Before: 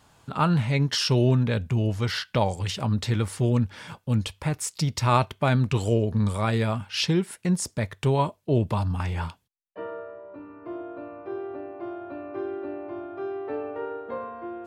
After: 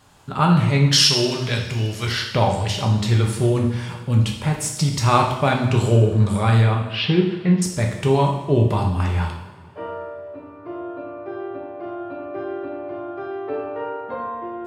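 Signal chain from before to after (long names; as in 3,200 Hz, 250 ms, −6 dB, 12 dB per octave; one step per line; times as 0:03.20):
0:00.90–0:02.07: tilt shelving filter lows −7.5 dB, about 1,300 Hz
0:06.61–0:07.62: inverse Chebyshev low-pass filter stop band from 8,300 Hz, stop band 50 dB
coupled-rooms reverb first 0.8 s, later 3.1 s, from −18 dB, DRR 0.5 dB
level +3 dB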